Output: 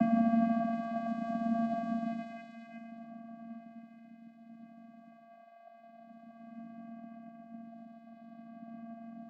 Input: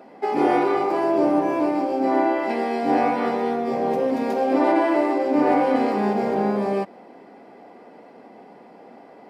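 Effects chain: random spectral dropouts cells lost 65%; Paulstretch 4.3×, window 0.50 s, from 6.29; vocoder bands 8, square 229 Hz

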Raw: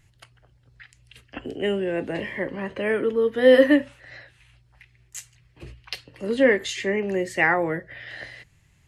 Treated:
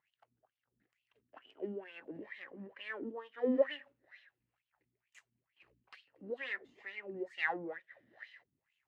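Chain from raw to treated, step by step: half-wave gain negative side -7 dB; wah 2.2 Hz 230–3100 Hz, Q 5.2; gain -4.5 dB

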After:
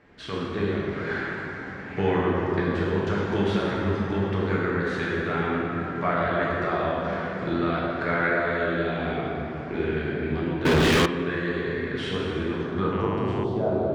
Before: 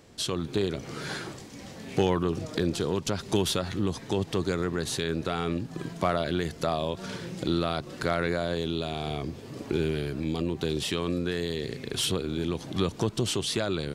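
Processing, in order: high shelf 4000 Hz +8 dB; plate-style reverb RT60 3.2 s, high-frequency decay 0.55×, DRR -6.5 dB; low-pass sweep 1800 Hz -> 750 Hz, 12.61–13.63; 10.65–11.06 sample leveller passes 5; 12.91–13.43 buzz 100 Hz, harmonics 32, -31 dBFS -4 dB/oct; gain -5.5 dB

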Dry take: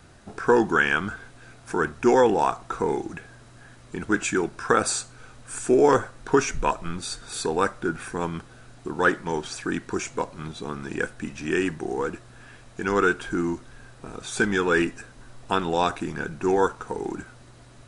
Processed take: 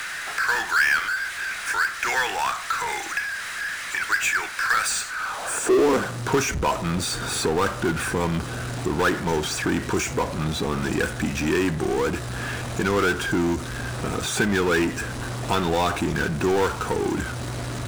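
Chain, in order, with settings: high-pass sweep 1800 Hz -> 64 Hz, 5.06–6.46; power-law curve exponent 0.5; three-band squash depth 40%; gain -7 dB

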